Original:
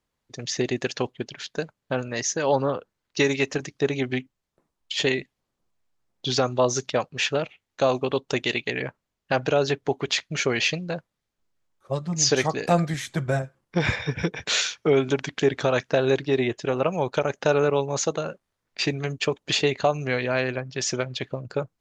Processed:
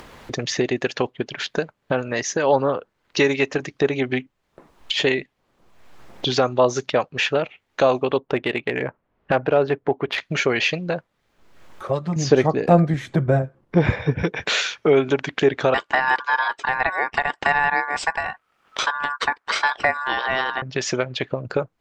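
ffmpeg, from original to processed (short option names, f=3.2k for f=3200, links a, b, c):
-filter_complex "[0:a]asettb=1/sr,asplit=3[a][b][c];[a]atrim=end=8.174[d];[b]atrim=start=8.17:end=10.18,asetpts=PTS-STARTPTS,afade=t=in:d=0.004:c=qsin,afade=t=out:st=2.006:d=0.004:c=qsin,adynamicsmooth=sensitivity=0.5:basefreq=1.9k[e];[c]atrim=start=10.176[f];[d][e]acrossfade=d=0.004:c1=hsin:c2=qsin[g];[g][f]acrossfade=d=0.004:c1=qsin:c2=hsin,asettb=1/sr,asplit=3[h][i][j];[h]atrim=end=12.164[k];[i]atrim=start=12.16:end=14.24,asetpts=PTS-STARTPTS,afade=t=in:d=0.004:c=qsin,afade=t=out:st=2.076:d=0.004:c=qsin,tiltshelf=f=760:g=7[l];[j]atrim=start=14.236[m];[k][l]acrossfade=d=0.004:c1=hsin:c2=qsin[n];[n][m]acrossfade=d=0.004:c1=qsin:c2=hsin,asettb=1/sr,asplit=3[o][p][q];[o]atrim=end=15.744[r];[p]atrim=start=15.74:end=20.62,asetpts=PTS-STARTPTS,afade=t=in:d=0.004:c=qsin,afade=t=out:st=4.876:d=0.004:c=qsin,aeval=exprs='val(0)*sin(2*PI*1300*n/s)':c=same[s];[q]atrim=start=20.616[t];[r][s]acrossfade=d=0.004:c1=hsin:c2=qsin[u];[u][t]acrossfade=d=0.004:c1=qsin:c2=hsin,bass=f=250:g=-5,treble=f=4k:g=-11,acompressor=mode=upward:threshold=-22dB:ratio=2.5,volume=4.5dB"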